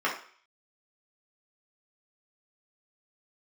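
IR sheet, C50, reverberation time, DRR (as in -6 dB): 7.0 dB, 0.50 s, -5.5 dB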